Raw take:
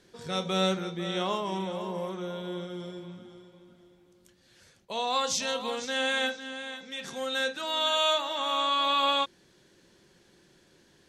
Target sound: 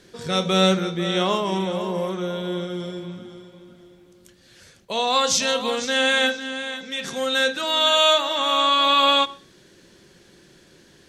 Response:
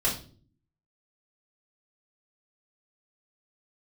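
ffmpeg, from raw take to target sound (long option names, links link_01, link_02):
-filter_complex "[0:a]equalizer=frequency=870:width=2.6:gain=-3.5,asplit=2[link_01][link_02];[1:a]atrim=start_sample=2205,adelay=75[link_03];[link_02][link_03]afir=irnorm=-1:irlink=0,volume=-31.5dB[link_04];[link_01][link_04]amix=inputs=2:normalize=0,volume=9dB"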